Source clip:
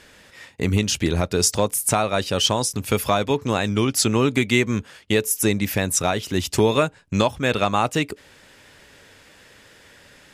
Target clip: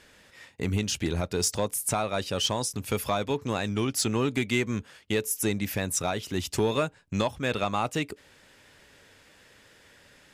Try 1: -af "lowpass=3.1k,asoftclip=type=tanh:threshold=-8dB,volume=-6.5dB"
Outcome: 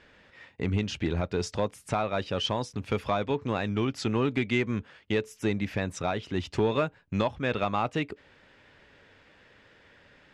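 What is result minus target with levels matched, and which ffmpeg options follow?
4000 Hz band -3.0 dB
-af "asoftclip=type=tanh:threshold=-8dB,volume=-6.5dB"

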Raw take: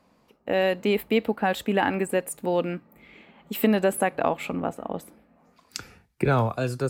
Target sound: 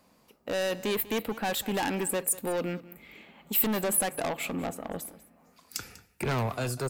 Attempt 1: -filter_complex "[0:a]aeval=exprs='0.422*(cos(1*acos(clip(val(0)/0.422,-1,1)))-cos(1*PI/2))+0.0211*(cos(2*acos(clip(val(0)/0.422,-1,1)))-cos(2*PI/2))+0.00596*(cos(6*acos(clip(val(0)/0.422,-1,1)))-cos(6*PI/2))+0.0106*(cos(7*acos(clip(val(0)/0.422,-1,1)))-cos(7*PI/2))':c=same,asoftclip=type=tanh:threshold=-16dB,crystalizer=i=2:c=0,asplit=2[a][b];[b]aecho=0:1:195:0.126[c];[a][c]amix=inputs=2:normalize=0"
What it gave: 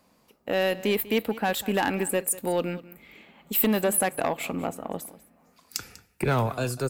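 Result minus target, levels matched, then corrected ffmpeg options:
soft clip: distortion -8 dB
-filter_complex "[0:a]aeval=exprs='0.422*(cos(1*acos(clip(val(0)/0.422,-1,1)))-cos(1*PI/2))+0.0211*(cos(2*acos(clip(val(0)/0.422,-1,1)))-cos(2*PI/2))+0.00596*(cos(6*acos(clip(val(0)/0.422,-1,1)))-cos(6*PI/2))+0.0106*(cos(7*acos(clip(val(0)/0.422,-1,1)))-cos(7*PI/2))':c=same,asoftclip=type=tanh:threshold=-25.5dB,crystalizer=i=2:c=0,asplit=2[a][b];[b]aecho=0:1:195:0.126[c];[a][c]amix=inputs=2:normalize=0"

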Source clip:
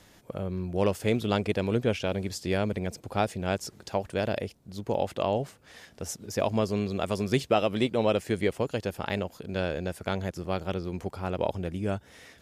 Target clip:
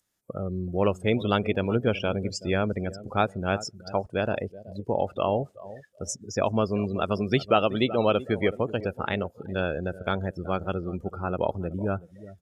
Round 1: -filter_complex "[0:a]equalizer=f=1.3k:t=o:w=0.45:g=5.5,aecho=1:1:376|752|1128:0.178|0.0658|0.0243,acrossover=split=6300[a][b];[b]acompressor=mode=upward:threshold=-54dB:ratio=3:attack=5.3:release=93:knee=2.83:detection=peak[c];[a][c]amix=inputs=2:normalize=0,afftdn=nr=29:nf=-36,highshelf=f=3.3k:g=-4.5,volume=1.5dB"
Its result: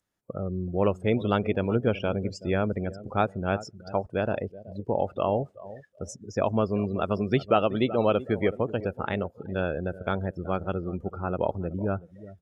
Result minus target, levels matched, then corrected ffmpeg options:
8000 Hz band -9.0 dB
-filter_complex "[0:a]equalizer=f=1.3k:t=o:w=0.45:g=5.5,aecho=1:1:376|752|1128:0.178|0.0658|0.0243,acrossover=split=6300[a][b];[b]acompressor=mode=upward:threshold=-54dB:ratio=3:attack=5.3:release=93:knee=2.83:detection=peak[c];[a][c]amix=inputs=2:normalize=0,afftdn=nr=29:nf=-36,highshelf=f=3.3k:g=7,volume=1.5dB"

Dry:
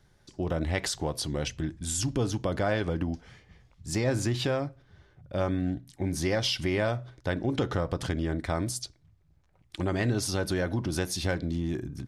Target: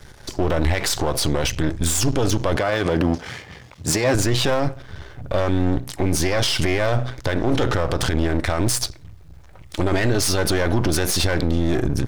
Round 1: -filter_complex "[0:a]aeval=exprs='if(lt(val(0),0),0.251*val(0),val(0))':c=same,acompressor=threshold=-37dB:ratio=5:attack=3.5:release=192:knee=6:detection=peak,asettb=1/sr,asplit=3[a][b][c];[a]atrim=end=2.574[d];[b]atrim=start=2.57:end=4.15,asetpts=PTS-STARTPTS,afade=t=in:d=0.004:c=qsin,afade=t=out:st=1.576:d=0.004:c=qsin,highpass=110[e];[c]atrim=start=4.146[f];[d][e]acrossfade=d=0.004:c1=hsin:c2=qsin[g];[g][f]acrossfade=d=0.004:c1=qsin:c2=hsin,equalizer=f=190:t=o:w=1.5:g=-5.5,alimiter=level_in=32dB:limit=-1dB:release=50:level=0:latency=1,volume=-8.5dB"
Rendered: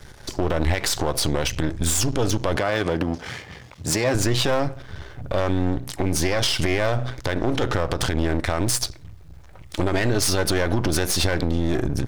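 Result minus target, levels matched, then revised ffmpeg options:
compressor: peak gain reduction +13.5 dB
-filter_complex "[0:a]aeval=exprs='if(lt(val(0),0),0.251*val(0),val(0))':c=same,asettb=1/sr,asplit=3[a][b][c];[a]atrim=end=2.574[d];[b]atrim=start=2.57:end=4.15,asetpts=PTS-STARTPTS,afade=t=in:d=0.004:c=qsin,afade=t=out:st=1.576:d=0.004:c=qsin,highpass=110[e];[c]atrim=start=4.146[f];[d][e]acrossfade=d=0.004:c1=hsin:c2=qsin[g];[g][f]acrossfade=d=0.004:c1=qsin:c2=hsin,equalizer=f=190:t=o:w=1.5:g=-5.5,alimiter=level_in=32dB:limit=-1dB:release=50:level=0:latency=1,volume=-8.5dB"

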